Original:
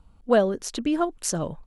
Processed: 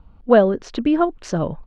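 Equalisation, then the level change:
high-frequency loss of the air 200 metres
high-shelf EQ 4,900 Hz −5.5 dB
+7.0 dB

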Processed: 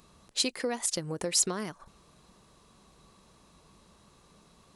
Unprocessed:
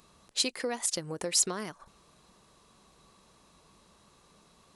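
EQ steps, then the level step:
low-shelf EQ 290 Hz +5 dB
0.0 dB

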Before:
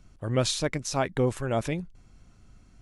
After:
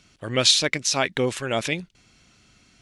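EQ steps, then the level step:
meter weighting curve D
+2.5 dB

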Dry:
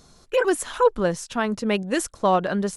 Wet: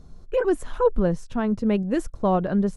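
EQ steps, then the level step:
spectral tilt −4 dB per octave
high-shelf EQ 7,600 Hz +5.5 dB
−5.5 dB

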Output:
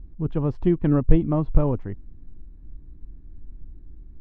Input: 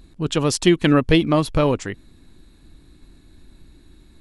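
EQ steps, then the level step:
low-pass filter 2,000 Hz 12 dB per octave
spectral tilt −4.5 dB per octave
dynamic equaliser 870 Hz, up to +5 dB, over −36 dBFS, Q 1.7
−13.0 dB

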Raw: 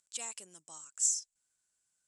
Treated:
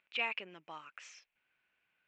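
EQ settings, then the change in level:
low-pass with resonance 2,500 Hz, resonance Q 4.7
high-frequency loss of the air 280 metres
low-shelf EQ 140 Hz −11 dB
+9.5 dB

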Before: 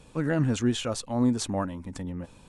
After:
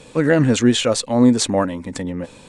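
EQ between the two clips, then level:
graphic EQ with 10 bands 125 Hz +5 dB, 250 Hz +7 dB, 500 Hz +12 dB, 1,000 Hz +4 dB, 2,000 Hz +11 dB, 4,000 Hz +9 dB, 8,000 Hz +11 dB
0.0 dB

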